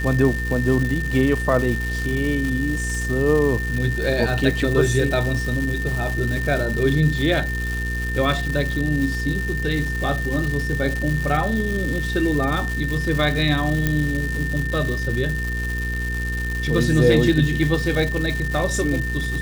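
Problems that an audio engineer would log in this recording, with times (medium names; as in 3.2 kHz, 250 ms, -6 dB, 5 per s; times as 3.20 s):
crackle 420 per s -25 dBFS
hum 60 Hz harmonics 8 -26 dBFS
whine 1.8 kHz -27 dBFS
13.87 s: pop -6 dBFS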